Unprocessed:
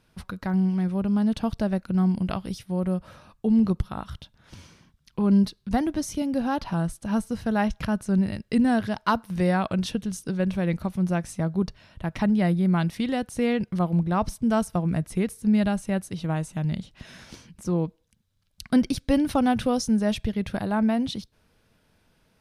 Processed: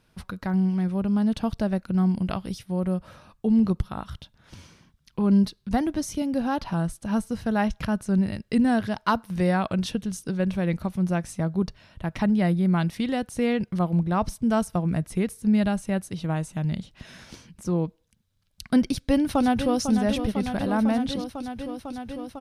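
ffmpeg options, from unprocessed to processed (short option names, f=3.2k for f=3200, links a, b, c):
-filter_complex "[0:a]asplit=2[a][b];[b]afade=t=in:st=18.85:d=0.01,afade=t=out:st=19.79:d=0.01,aecho=0:1:500|1000|1500|2000|2500|3000|3500|4000|4500|5000|5500|6000:0.375837|0.319462|0.271543|0.230811|0.196189|0.166761|0.141747|0.120485|0.102412|0.0870503|0.0739928|0.0628939[c];[a][c]amix=inputs=2:normalize=0"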